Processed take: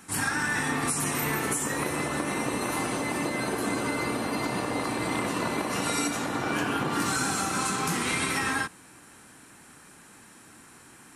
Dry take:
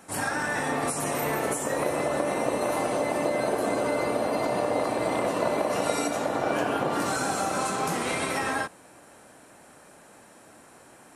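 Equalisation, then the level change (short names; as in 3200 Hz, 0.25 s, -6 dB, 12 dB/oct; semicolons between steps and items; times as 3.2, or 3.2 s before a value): bell 600 Hz -15 dB 0.91 oct; +3.5 dB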